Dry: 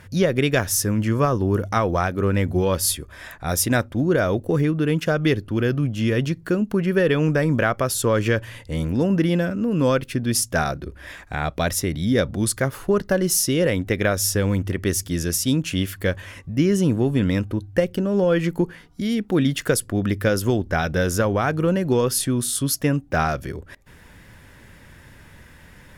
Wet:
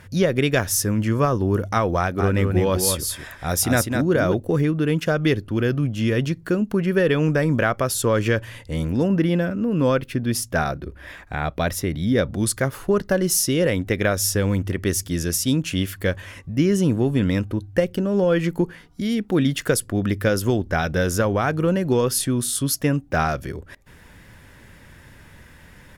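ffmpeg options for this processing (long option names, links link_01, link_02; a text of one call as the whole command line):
ffmpeg -i in.wav -filter_complex "[0:a]asplit=3[link_01][link_02][link_03];[link_01]afade=type=out:start_time=2.18:duration=0.02[link_04];[link_02]aecho=1:1:203:0.531,afade=type=in:start_time=2.18:duration=0.02,afade=type=out:start_time=4.33:duration=0.02[link_05];[link_03]afade=type=in:start_time=4.33:duration=0.02[link_06];[link_04][link_05][link_06]amix=inputs=3:normalize=0,asettb=1/sr,asplit=3[link_07][link_08][link_09];[link_07]atrim=end=9.084[link_10];[link_08]atrim=start=9.08:end=12.31,asetpts=PTS-STARTPTS,afade=type=in:duration=0.004:curve=qsin,afade=type=out:start_time=3.226:duration=0.004:curve=qsin,equalizer=frequency=7700:width_type=o:width=1.7:gain=-6[link_11];[link_09]atrim=start=12.306[link_12];[link_10][link_11]acrossfade=duration=0.004:curve1=hsin:curve2=qsin[link_13];[link_13][link_12]acrossfade=duration=0.004:curve1=qsin:curve2=hsin" out.wav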